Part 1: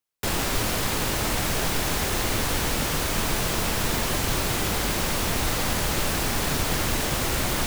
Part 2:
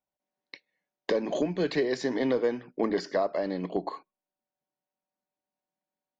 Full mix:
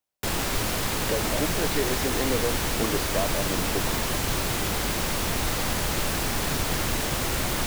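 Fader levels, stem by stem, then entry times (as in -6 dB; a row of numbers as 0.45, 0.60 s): -1.5, -2.0 dB; 0.00, 0.00 s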